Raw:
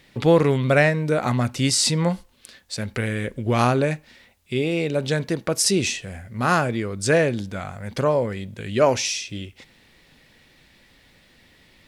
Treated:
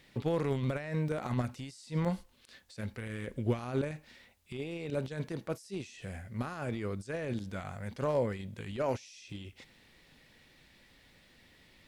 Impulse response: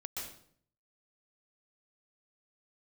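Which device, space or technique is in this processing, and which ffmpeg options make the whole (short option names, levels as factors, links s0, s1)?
de-esser from a sidechain: -filter_complex "[0:a]asplit=2[s0][s1];[s1]highpass=4200,apad=whole_len=523744[s2];[s0][s2]sidechaincompress=threshold=0.00562:ratio=12:attack=0.69:release=39,volume=0.473"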